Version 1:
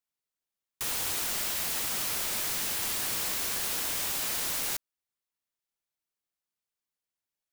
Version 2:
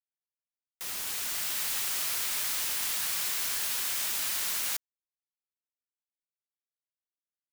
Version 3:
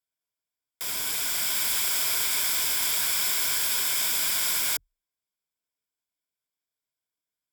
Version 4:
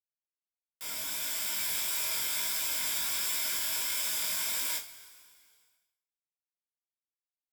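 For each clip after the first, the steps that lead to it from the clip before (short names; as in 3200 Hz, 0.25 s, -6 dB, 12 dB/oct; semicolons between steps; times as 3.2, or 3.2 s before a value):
opening faded in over 1.69 s; HPF 1100 Hz 12 dB/oct; bit-crush 6-bit
ripple EQ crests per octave 1.7, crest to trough 9 dB; gain +4.5 dB
two-slope reverb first 0.22 s, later 2.3 s, from -22 dB, DRR -2.5 dB; chorus 1.5 Hz, delay 17.5 ms, depth 3.9 ms; expander -58 dBFS; gain -7.5 dB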